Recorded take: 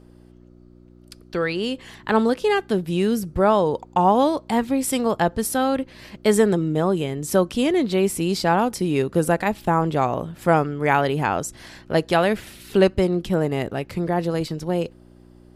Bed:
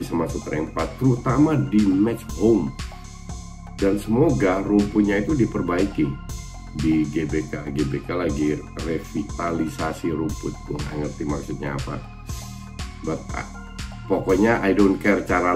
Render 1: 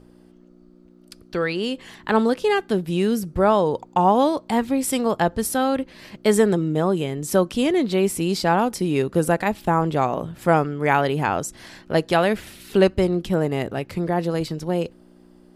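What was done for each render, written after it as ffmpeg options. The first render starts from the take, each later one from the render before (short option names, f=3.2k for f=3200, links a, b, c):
-af "bandreject=f=60:t=h:w=4,bandreject=f=120:t=h:w=4"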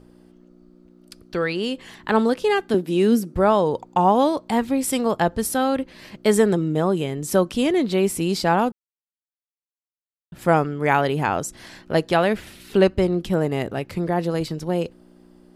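-filter_complex "[0:a]asettb=1/sr,asplit=3[a][b][c];[a]atrim=end=2.744[d];[b]atrim=start=2.74:end=3.35,asetpts=PTS-STARTPTS,afade=t=in:d=0.004:c=qsin,afade=t=out:st=0.606:d=0.004:c=qsin,highpass=f=260:t=q:w=2.2[e];[c]atrim=start=3.346[f];[d][e]acrossfade=d=0.004:c1=hsin:c2=qsin[g];[g][f]acrossfade=d=0.004:c1=qsin:c2=hsin,asettb=1/sr,asplit=3[h][i][j];[h]atrim=end=12.094[k];[i]atrim=start=12.09:end=13.17,asetpts=PTS-STARTPTS,afade=t=in:d=0.004:c=qsin,afade=t=out:st=1.076:d=0.004:c=qsin,highshelf=f=6k:g=-4.5[l];[j]atrim=start=13.166[m];[k][l]acrossfade=d=0.004:c1=hsin:c2=qsin[n];[n][m]acrossfade=d=0.004:c1=qsin:c2=hsin,asplit=3[o][p][q];[o]atrim=end=8.72,asetpts=PTS-STARTPTS,afade=t=out:st=8.716:d=0.004:c=hsin[r];[p]atrim=start=8.72:end=10.32,asetpts=PTS-STARTPTS,volume=0[s];[q]atrim=start=10.32,asetpts=PTS-STARTPTS,afade=t=in:d=0.004:c=hsin[t];[r][s][t]concat=n=3:v=0:a=1"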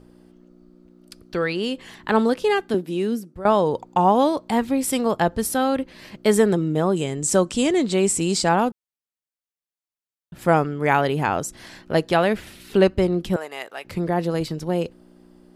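-filter_complex "[0:a]asettb=1/sr,asplit=3[a][b][c];[a]atrim=end=6.964[d];[b]atrim=start=6.96:end=8.49,asetpts=PTS-STARTPTS,afade=t=in:d=0.004:c=qsin,afade=t=out:st=1.526:d=0.004:c=qsin,lowpass=f=7.9k:t=q:w=4.2[e];[c]atrim=start=8.486[f];[d][e]acrossfade=d=0.004:c1=hsin:c2=qsin[g];[g][f]acrossfade=d=0.004:c1=qsin:c2=hsin,asettb=1/sr,asplit=3[h][i][j];[h]atrim=end=13.364[k];[i]atrim=start=13.36:end=13.85,asetpts=PTS-STARTPTS,afade=t=in:d=0.004:c=qsin,afade=t=out:st=0.486:d=0.004:c=qsin,highpass=900[l];[j]atrim=start=13.846[m];[k][l]acrossfade=d=0.004:c1=hsin:c2=qsin[n];[n][m]acrossfade=d=0.004:c1=qsin:c2=hsin,asplit=2[o][p];[o]atrim=end=3.45,asetpts=PTS-STARTPTS,afade=t=out:st=2.5:d=0.95:silence=0.149624[q];[p]atrim=start=3.45,asetpts=PTS-STARTPTS,afade=t=in:d=0.004:c=hsin:silence=0.149624[r];[q][r]concat=n=2:v=0:a=1"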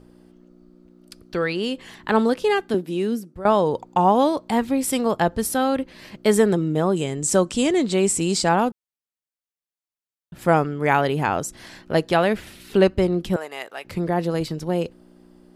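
-af anull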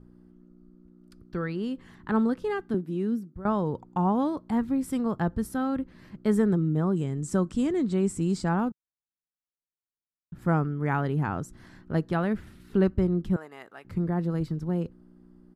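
-af "firequalizer=gain_entry='entry(150,0);entry(560,-14);entry(1300,-7);entry(2500,-18)':delay=0.05:min_phase=1"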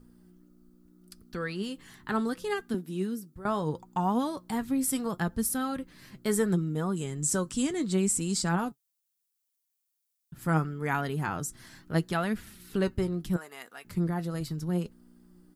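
-af "crystalizer=i=6.5:c=0,flanger=delay=4.1:depth=3.6:regen=54:speed=0.73:shape=sinusoidal"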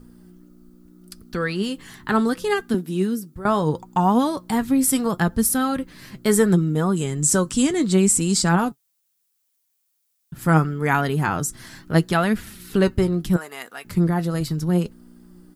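-af "volume=9.5dB"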